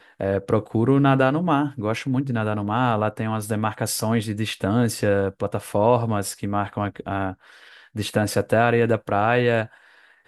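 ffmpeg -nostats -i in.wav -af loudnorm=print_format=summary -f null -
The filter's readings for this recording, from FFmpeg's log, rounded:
Input Integrated:    -22.2 LUFS
Input True Peak:      -4.5 dBTP
Input LRA:             2.2 LU
Input Threshold:     -32.8 LUFS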